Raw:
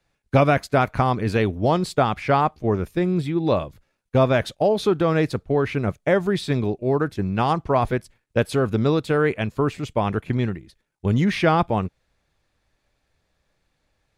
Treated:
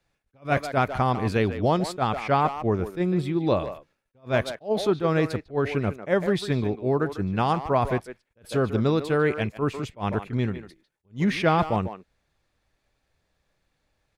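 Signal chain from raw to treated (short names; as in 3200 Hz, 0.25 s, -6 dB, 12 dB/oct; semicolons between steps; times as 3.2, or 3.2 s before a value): speakerphone echo 0.15 s, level -10 dB; attack slew limiter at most 300 dB/s; gain -2.5 dB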